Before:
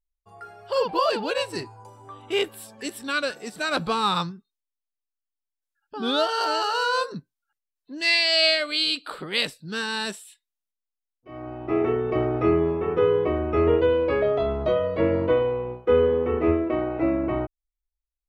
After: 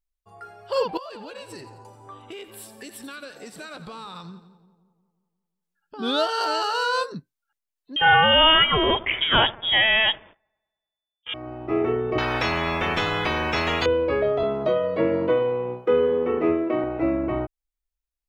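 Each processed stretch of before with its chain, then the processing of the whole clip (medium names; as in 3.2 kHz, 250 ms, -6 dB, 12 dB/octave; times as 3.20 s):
0.97–5.99 s: compression 10:1, threshold -35 dBFS + two-band feedback delay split 870 Hz, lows 178 ms, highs 87 ms, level -13 dB
7.96–11.34 s: feedback echo behind a high-pass 99 ms, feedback 61%, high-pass 2.6 kHz, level -19.5 dB + waveshaping leveller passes 3 + frequency inversion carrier 3.5 kHz
12.18–13.86 s: peaking EQ 1.6 kHz -9 dB 1.7 oct + band-stop 2.9 kHz + spectrum-flattening compressor 10:1
14.43–16.84 s: high-pass 120 Hz 24 dB/octave + three bands compressed up and down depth 40%
whole clip: none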